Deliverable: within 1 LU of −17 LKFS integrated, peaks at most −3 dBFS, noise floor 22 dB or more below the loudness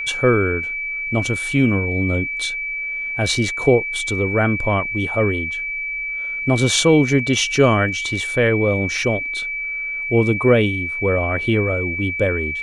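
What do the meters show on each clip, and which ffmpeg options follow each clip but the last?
interfering tone 2,300 Hz; level of the tone −23 dBFS; integrated loudness −19.0 LKFS; sample peak −2.5 dBFS; target loudness −17.0 LKFS
→ -af "bandreject=frequency=2300:width=30"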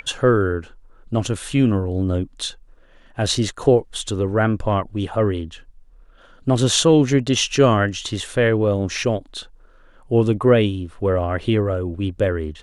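interfering tone none found; integrated loudness −20.0 LKFS; sample peak −3.0 dBFS; target loudness −17.0 LKFS
→ -af "volume=3dB,alimiter=limit=-3dB:level=0:latency=1"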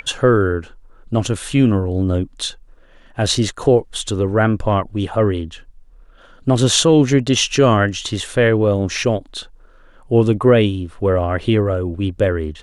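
integrated loudness −17.5 LKFS; sample peak −3.0 dBFS; background noise floor −47 dBFS

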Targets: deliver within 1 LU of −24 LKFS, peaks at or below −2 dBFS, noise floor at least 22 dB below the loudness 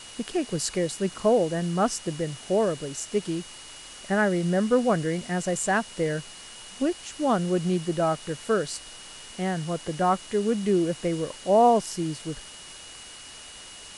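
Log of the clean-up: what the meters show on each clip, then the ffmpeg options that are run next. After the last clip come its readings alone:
interfering tone 2,900 Hz; level of the tone −47 dBFS; background noise floor −44 dBFS; target noise floor −48 dBFS; integrated loudness −26.0 LKFS; sample peak −9.5 dBFS; target loudness −24.0 LKFS
→ -af "bandreject=frequency=2900:width=30"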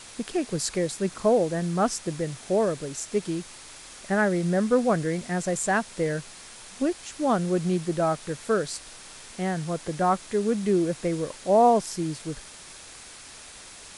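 interfering tone none found; background noise floor −45 dBFS; target noise floor −48 dBFS
→ -af "afftdn=noise_reduction=6:noise_floor=-45"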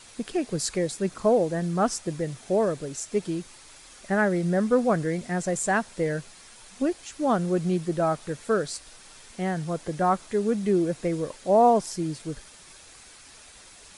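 background noise floor −50 dBFS; integrated loudness −26.0 LKFS; sample peak −9.5 dBFS; target loudness −24.0 LKFS
→ -af "volume=2dB"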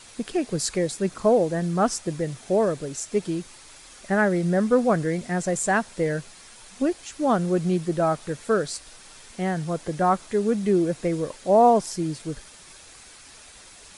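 integrated loudness −24.0 LKFS; sample peak −7.5 dBFS; background noise floor −48 dBFS

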